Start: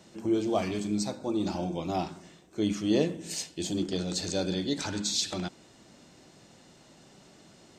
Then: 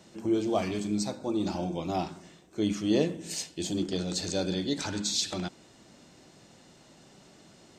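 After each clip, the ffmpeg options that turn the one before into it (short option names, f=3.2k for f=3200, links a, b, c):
-af anull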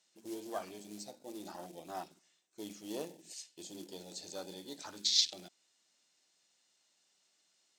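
-af "afwtdn=0.02,acrusher=bits=8:mode=log:mix=0:aa=0.000001,bandpass=f=7.1k:t=q:w=0.51:csg=0,volume=4.5dB"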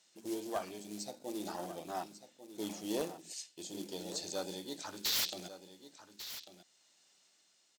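-af "tremolo=f=0.71:d=0.31,aeval=exprs='0.0251*(abs(mod(val(0)/0.0251+3,4)-2)-1)':c=same,aecho=1:1:1145:0.237,volume=5.5dB"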